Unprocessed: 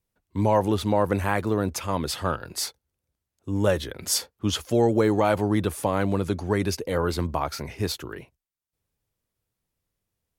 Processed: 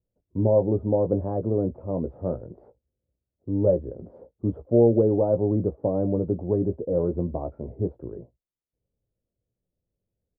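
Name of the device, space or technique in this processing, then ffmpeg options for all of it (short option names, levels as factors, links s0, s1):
under water: -filter_complex "[0:a]lowpass=f=590:w=0.5412,lowpass=f=590:w=1.3066,equalizer=f=570:t=o:w=0.49:g=4.5,asplit=2[s0][s1];[s1]adelay=17,volume=0.398[s2];[s0][s2]amix=inputs=2:normalize=0"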